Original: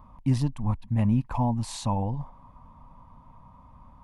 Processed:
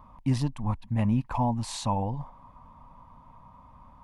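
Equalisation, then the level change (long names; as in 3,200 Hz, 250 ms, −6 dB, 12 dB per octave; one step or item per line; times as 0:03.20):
low-shelf EQ 370 Hz −5.5 dB
high-shelf EQ 9,100 Hz −5 dB
+2.5 dB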